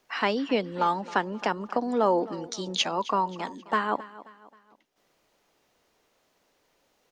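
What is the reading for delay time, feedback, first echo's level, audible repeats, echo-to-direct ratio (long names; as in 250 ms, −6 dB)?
266 ms, 42%, −18.0 dB, 3, −17.0 dB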